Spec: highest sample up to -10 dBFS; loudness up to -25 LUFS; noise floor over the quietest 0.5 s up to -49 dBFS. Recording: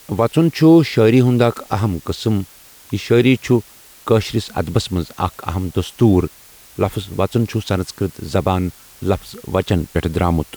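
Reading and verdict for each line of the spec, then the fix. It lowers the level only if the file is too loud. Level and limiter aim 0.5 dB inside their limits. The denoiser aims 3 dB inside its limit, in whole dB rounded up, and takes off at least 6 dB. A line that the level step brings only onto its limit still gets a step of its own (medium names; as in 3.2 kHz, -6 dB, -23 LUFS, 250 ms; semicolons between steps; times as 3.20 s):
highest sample -2.5 dBFS: fail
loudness -18.0 LUFS: fail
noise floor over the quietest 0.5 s -44 dBFS: fail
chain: trim -7.5 dB; peak limiter -10.5 dBFS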